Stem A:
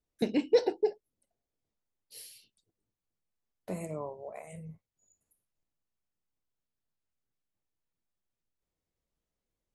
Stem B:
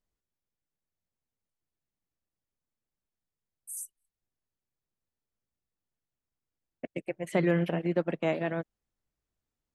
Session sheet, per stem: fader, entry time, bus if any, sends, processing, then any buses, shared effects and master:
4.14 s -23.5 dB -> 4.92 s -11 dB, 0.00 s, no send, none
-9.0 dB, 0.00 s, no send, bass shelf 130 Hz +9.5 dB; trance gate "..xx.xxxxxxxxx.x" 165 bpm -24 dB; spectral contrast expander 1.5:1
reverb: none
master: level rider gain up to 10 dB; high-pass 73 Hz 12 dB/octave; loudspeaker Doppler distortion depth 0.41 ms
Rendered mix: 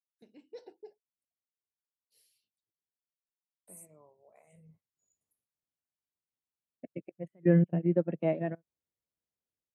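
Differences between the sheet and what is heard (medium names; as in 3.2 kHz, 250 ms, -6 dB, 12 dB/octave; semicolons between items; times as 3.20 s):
stem A -23.5 dB -> -31.5 dB; master: missing loudspeaker Doppler distortion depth 0.41 ms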